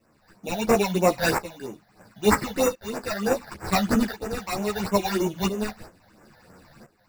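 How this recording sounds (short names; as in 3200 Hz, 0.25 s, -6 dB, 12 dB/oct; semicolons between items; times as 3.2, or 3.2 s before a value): aliases and images of a low sample rate 3200 Hz, jitter 0%; phasing stages 8, 3.1 Hz, lowest notch 320–4200 Hz; tremolo saw up 0.73 Hz, depth 85%; a shimmering, thickened sound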